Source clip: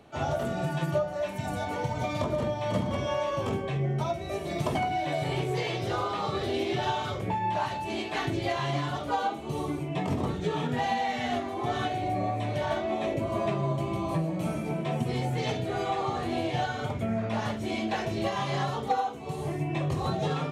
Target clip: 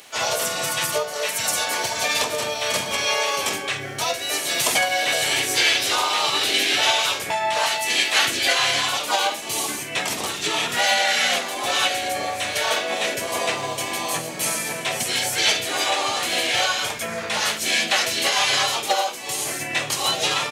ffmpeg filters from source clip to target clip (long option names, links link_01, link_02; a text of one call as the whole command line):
ffmpeg -i in.wav -filter_complex "[0:a]crystalizer=i=6.5:c=0,asplit=2[link_01][link_02];[link_02]asetrate=33038,aresample=44100,atempo=1.33484,volume=-2dB[link_03];[link_01][link_03]amix=inputs=2:normalize=0,highpass=frequency=1400:poles=1,volume=7.5dB" out.wav